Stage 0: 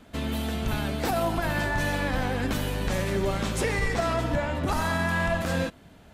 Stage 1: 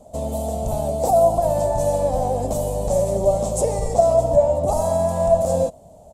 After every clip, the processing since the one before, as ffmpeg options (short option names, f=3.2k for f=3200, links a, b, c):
-af "firequalizer=gain_entry='entry(130,0);entry(330,-7);entry(600,14);entry(1500,-25);entry(7500,8);entry(14000,-3)':delay=0.05:min_phase=1,volume=3dB"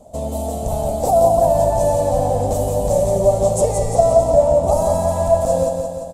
-af "aecho=1:1:174|348|522|696|870|1044|1218|1392:0.562|0.326|0.189|0.11|0.0636|0.0369|0.0214|0.0124,volume=1.5dB"